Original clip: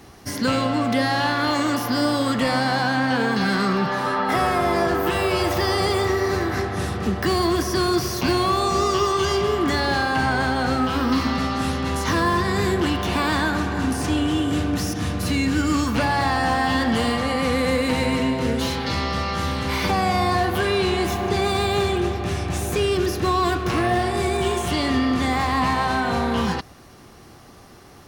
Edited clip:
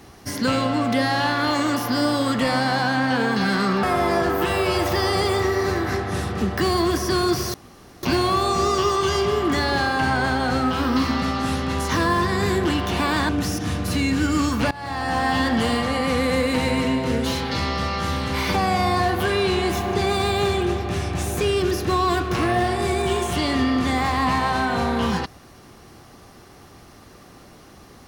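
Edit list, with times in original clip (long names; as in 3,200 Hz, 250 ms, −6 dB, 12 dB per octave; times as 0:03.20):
0:03.83–0:04.48: remove
0:08.19: splice in room tone 0.49 s
0:13.45–0:14.64: remove
0:16.06–0:16.62: fade in linear, from −21 dB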